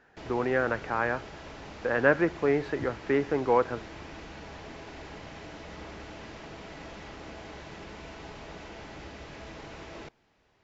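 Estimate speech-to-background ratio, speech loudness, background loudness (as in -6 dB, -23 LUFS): 16.0 dB, -28.0 LUFS, -44.0 LUFS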